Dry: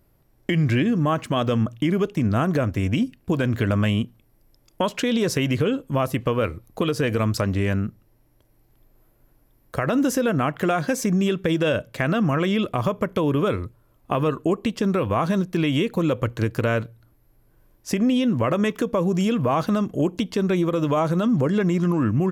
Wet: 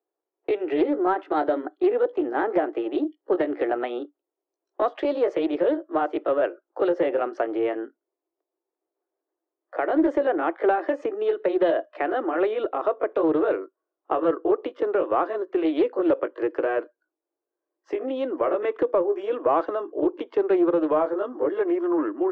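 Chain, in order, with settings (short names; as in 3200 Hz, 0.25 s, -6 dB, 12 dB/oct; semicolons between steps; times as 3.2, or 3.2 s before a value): gliding pitch shift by +3.5 st ending unshifted; spectral noise reduction 19 dB; steep high-pass 310 Hz 72 dB/oct; high shelf 3300 Hz -11 dB; in parallel at -11 dB: hard clip -22 dBFS, distortion -13 dB; on the sum: tape spacing loss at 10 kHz 44 dB; Doppler distortion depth 0.15 ms; gain +4 dB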